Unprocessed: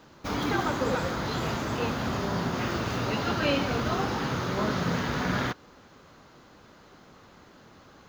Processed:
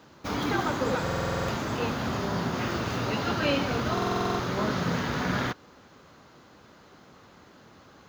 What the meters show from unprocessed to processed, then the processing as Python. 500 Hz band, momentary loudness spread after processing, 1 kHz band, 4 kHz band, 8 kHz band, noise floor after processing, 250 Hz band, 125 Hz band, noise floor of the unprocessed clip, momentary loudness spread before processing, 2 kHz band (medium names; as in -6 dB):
+0.5 dB, 3 LU, +0.5 dB, 0.0 dB, 0.0 dB, -54 dBFS, 0.0 dB, 0.0 dB, -54 dBFS, 4 LU, 0.0 dB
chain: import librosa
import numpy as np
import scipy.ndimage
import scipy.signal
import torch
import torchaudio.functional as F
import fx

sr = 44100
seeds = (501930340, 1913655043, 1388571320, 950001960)

y = scipy.signal.sosfilt(scipy.signal.butter(2, 54.0, 'highpass', fs=sr, output='sos'), x)
y = fx.buffer_glitch(y, sr, at_s=(1.02, 3.93), block=2048, repeats=9)